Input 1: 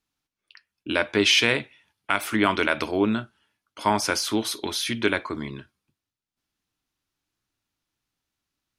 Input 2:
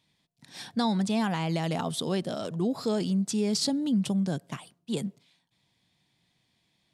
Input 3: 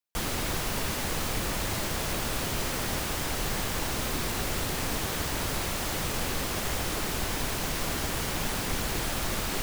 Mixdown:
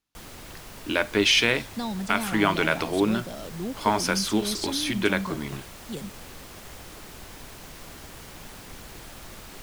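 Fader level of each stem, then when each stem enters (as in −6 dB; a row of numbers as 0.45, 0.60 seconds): −1.0, −5.0, −12.5 decibels; 0.00, 1.00, 0.00 seconds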